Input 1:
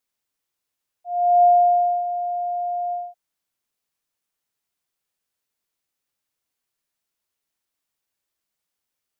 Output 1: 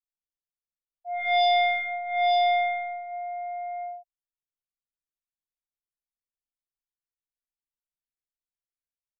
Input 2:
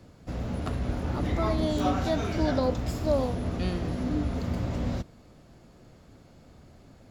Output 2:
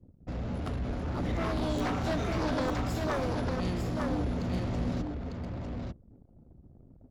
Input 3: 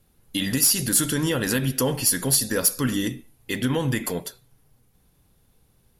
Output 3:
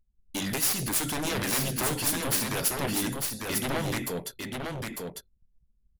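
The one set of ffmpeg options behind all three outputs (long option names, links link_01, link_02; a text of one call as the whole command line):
ffmpeg -i in.wav -af "aeval=exprs='0.376*(cos(1*acos(clip(val(0)/0.376,-1,1)))-cos(1*PI/2))+0.0168*(cos(2*acos(clip(val(0)/0.376,-1,1)))-cos(2*PI/2))+0.0944*(cos(3*acos(clip(val(0)/0.376,-1,1)))-cos(3*PI/2))+0.0133*(cos(4*acos(clip(val(0)/0.376,-1,1)))-cos(4*PI/2))+0.106*(cos(7*acos(clip(val(0)/0.376,-1,1)))-cos(7*PI/2))':channel_layout=same,aecho=1:1:900:0.631,anlmdn=0.158,volume=-6dB" out.wav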